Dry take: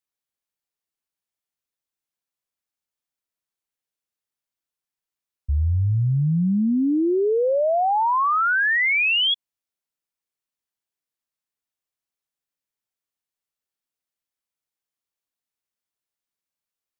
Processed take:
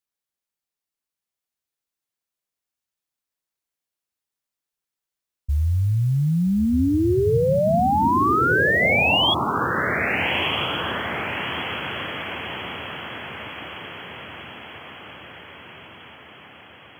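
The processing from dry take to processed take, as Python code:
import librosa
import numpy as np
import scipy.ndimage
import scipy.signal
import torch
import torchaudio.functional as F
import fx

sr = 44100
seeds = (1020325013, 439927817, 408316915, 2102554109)

y = fx.mod_noise(x, sr, seeds[0], snr_db=32)
y = fx.echo_diffused(y, sr, ms=1318, feedback_pct=57, wet_db=-4.5)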